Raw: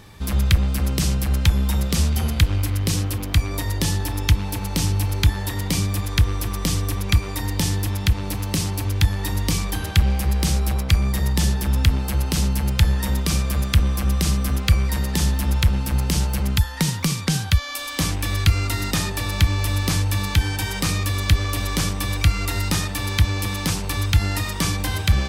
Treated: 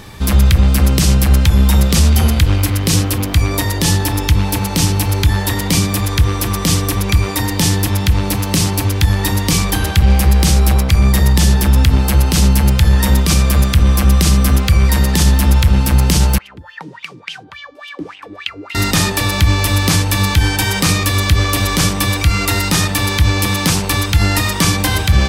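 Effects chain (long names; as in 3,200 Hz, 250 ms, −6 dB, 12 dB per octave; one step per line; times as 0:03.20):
mains-hum notches 50/100/150 Hz
0:16.38–0:18.75: LFO wah 3.5 Hz 300–3,000 Hz, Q 7.8
boost into a limiter +11.5 dB
level −1 dB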